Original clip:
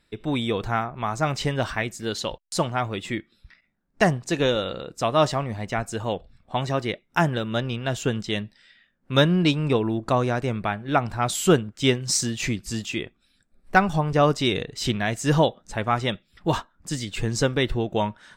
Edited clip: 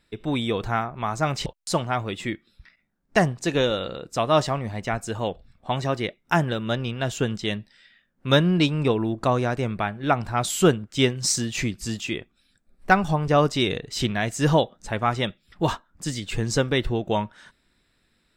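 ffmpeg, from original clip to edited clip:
-filter_complex "[0:a]asplit=2[s0][s1];[s0]atrim=end=1.462[s2];[s1]atrim=start=2.308[s3];[s2][s3]acrossfade=d=0.004:c1=hsin:c2=hsin"

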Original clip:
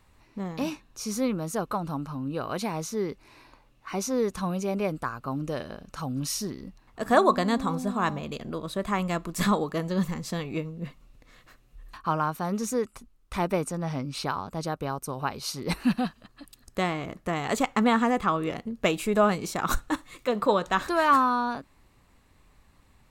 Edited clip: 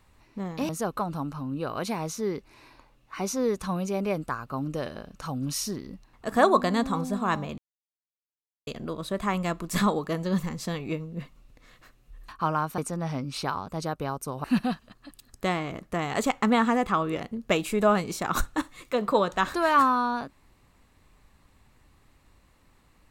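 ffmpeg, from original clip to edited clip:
-filter_complex "[0:a]asplit=5[s0][s1][s2][s3][s4];[s0]atrim=end=0.692[s5];[s1]atrim=start=1.428:end=8.32,asetpts=PTS-STARTPTS,afade=t=out:st=6.888:d=0.004:c=hsin,apad=pad_dur=1.09[s6];[s2]atrim=start=8.32:end=12.432,asetpts=PTS-STARTPTS,afade=t=in:d=0.004:c=hsin[s7];[s3]atrim=start=13.588:end=15.252[s8];[s4]atrim=start=15.778[s9];[s6][s7]concat=n=2:v=0:a=1[s10];[s5][s10]acrossfade=d=0.004:c1=hsin:c2=hsin[s11];[s11][s8]acrossfade=d=0.004:c1=hsin:c2=hsin[s12];[s12][s9]acrossfade=d=0.004:c1=hsin:c2=hsin"

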